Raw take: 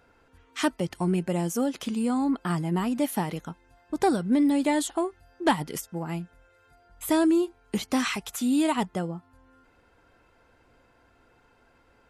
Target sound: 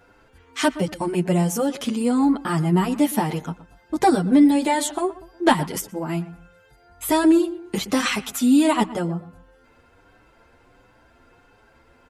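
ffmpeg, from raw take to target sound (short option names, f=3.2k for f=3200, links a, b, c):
-filter_complex "[0:a]asplit=2[a][b];[b]adelay=120,lowpass=f=2k:p=1,volume=-15.5dB,asplit=2[c][d];[d]adelay=120,lowpass=f=2k:p=1,volume=0.3,asplit=2[e][f];[f]adelay=120,lowpass=f=2k:p=1,volume=0.3[g];[c][e][g]amix=inputs=3:normalize=0[h];[a][h]amix=inputs=2:normalize=0,asplit=2[i][j];[j]adelay=8,afreqshift=1.4[k];[i][k]amix=inputs=2:normalize=1,volume=9dB"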